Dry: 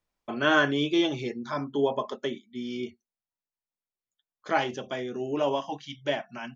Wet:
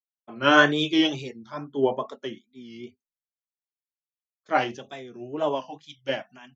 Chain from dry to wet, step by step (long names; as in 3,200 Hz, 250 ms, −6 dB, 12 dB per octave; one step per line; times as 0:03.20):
tape wow and flutter 110 cents
multiband upward and downward expander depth 100%